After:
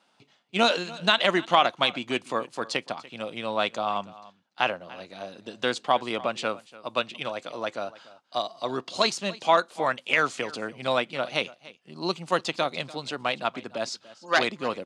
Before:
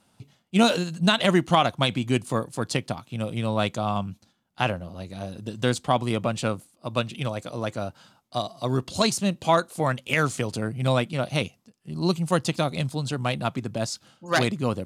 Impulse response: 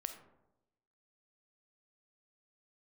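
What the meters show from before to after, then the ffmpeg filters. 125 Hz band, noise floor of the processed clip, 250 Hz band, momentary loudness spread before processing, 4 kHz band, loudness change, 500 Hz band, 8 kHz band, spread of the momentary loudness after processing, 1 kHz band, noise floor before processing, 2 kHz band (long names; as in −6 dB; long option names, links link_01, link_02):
−16.0 dB, −66 dBFS, −8.5 dB, 13 LU, +1.0 dB, −1.5 dB, −1.5 dB, −6.0 dB, 13 LU, +1.0 dB, −66 dBFS, +2.0 dB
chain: -filter_complex "[0:a]highpass=270,lowpass=4700,lowshelf=frequency=450:gain=-8.5,asplit=2[link_01][link_02];[link_02]aecho=0:1:291:0.106[link_03];[link_01][link_03]amix=inputs=2:normalize=0,volume=2.5dB"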